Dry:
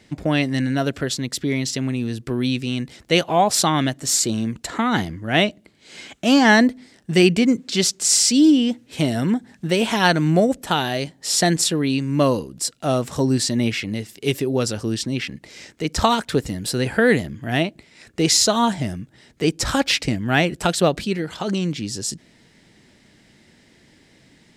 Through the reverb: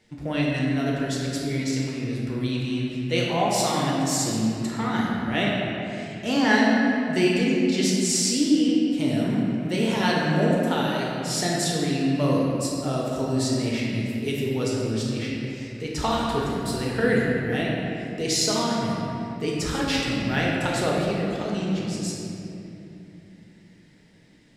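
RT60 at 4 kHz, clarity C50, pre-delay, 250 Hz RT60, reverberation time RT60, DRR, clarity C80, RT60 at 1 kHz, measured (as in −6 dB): 1.8 s, −1.5 dB, 5 ms, 4.3 s, 2.9 s, −4.5 dB, 0.0 dB, 2.5 s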